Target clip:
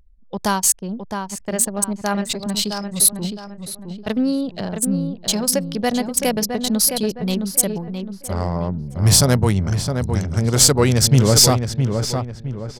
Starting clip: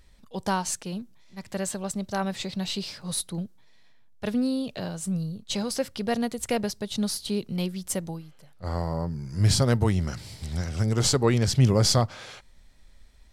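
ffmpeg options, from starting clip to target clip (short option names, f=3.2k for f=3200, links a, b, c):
-filter_complex "[0:a]anlmdn=6.31,aemphasis=mode=production:type=50fm,acontrast=69,asplit=2[a][b];[b]adelay=691,lowpass=f=2.2k:p=1,volume=-6dB,asplit=2[c][d];[d]adelay=691,lowpass=f=2.2k:p=1,volume=0.4,asplit=2[e][f];[f]adelay=691,lowpass=f=2.2k:p=1,volume=0.4,asplit=2[g][h];[h]adelay=691,lowpass=f=2.2k:p=1,volume=0.4,asplit=2[i][j];[j]adelay=691,lowpass=f=2.2k:p=1,volume=0.4[k];[a][c][e][g][i][k]amix=inputs=6:normalize=0,asetrate=45938,aresample=44100"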